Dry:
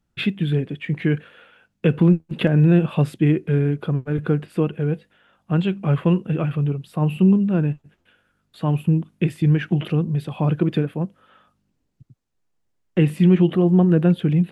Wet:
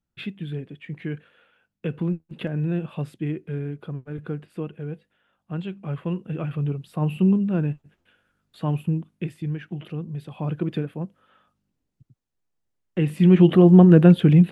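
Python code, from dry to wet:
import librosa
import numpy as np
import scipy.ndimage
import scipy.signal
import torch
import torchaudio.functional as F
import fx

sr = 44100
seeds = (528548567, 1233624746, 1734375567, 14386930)

y = fx.gain(x, sr, db=fx.line((6.02, -10.5), (6.7, -3.5), (8.67, -3.5), (9.66, -13.0), (10.69, -6.0), (12.98, -6.0), (13.52, 4.0)))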